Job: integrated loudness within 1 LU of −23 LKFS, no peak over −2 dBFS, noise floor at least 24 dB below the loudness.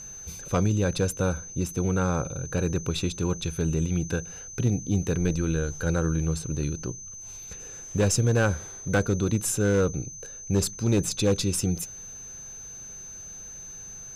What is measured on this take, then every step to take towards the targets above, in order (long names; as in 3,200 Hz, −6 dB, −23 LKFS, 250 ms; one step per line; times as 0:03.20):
share of clipped samples 0.5%; peaks flattened at −16.0 dBFS; interfering tone 6,200 Hz; level of the tone −39 dBFS; integrated loudness −26.5 LKFS; sample peak −16.0 dBFS; target loudness −23.0 LKFS
→ clipped peaks rebuilt −16 dBFS
notch filter 6,200 Hz, Q 30
level +3.5 dB